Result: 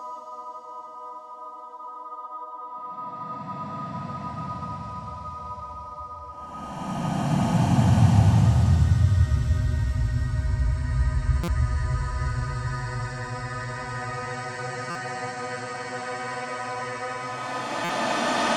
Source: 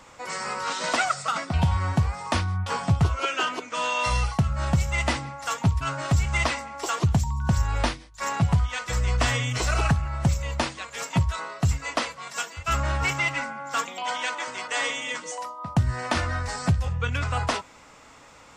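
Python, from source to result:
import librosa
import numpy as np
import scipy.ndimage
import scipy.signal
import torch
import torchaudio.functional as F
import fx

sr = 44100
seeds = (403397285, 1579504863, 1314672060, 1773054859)

y = fx.paulstretch(x, sr, seeds[0], factor=31.0, window_s=0.1, from_s=15.52)
y = fx.buffer_glitch(y, sr, at_s=(11.43, 14.9, 17.84), block=256, repeats=8)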